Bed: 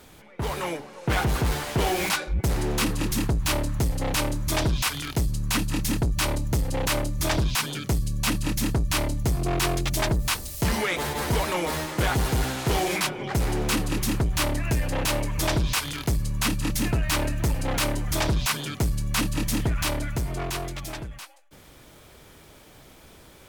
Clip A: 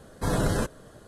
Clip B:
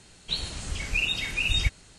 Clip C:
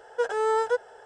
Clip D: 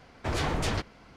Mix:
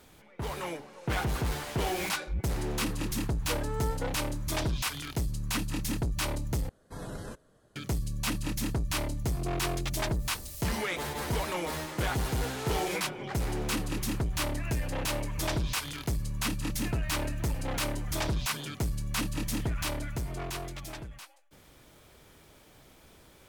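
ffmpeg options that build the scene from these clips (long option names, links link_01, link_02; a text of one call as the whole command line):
ffmpeg -i bed.wav -i cue0.wav -i cue1.wav -i cue2.wav -filter_complex "[3:a]asplit=2[link_01][link_02];[0:a]volume=-6.5dB,asplit=2[link_03][link_04];[link_03]atrim=end=6.694[link_05];[1:a]atrim=end=1.07,asetpts=PTS-STARTPTS,volume=-15dB[link_06];[link_04]atrim=start=7.756[link_07];[link_01]atrim=end=1.05,asetpts=PTS-STARTPTS,volume=-12.5dB,afade=type=in:duration=0.004:curve=hsin,afade=type=out:start_time=1.046:duration=0.004:curve=hsin,adelay=3310[link_08];[link_02]atrim=end=1.05,asetpts=PTS-STARTPTS,volume=-15dB,afade=type=in:duration=0.004:curve=hsin,afade=type=out:start_time=1.046:duration=0.004:curve=hsin,adelay=12230[link_09];[link_05][link_06]acrossfade=duration=0.004:curve1=hsin:curve2=hsin[link_10];[link_10][link_07]acrossfade=duration=0.004:curve1=hsin:curve2=hsin[link_11];[link_11][link_08][link_09]amix=inputs=3:normalize=0" out.wav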